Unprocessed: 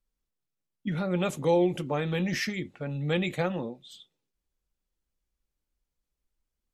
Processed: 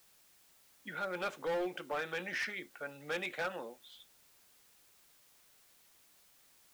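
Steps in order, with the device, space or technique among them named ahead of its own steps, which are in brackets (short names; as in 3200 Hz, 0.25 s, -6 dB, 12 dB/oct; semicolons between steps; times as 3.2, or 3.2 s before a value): drive-through speaker (BPF 530–3600 Hz; bell 1500 Hz +10 dB 0.33 oct; hard clip -27 dBFS, distortion -10 dB; white noise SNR 23 dB); gain -4 dB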